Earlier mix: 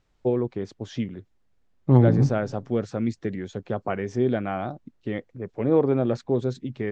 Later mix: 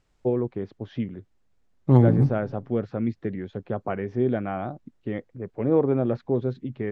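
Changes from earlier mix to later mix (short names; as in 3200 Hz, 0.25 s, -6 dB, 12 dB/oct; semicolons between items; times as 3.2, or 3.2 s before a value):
first voice: add air absorption 330 m; second voice: remove air absorption 65 m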